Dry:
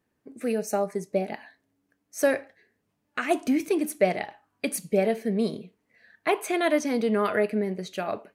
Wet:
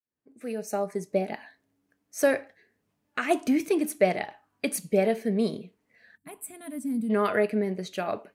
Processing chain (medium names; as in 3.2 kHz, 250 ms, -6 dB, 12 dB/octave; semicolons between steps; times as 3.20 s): fade-in on the opening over 1.08 s; time-frequency box 6.17–7.10 s, 300–7200 Hz -22 dB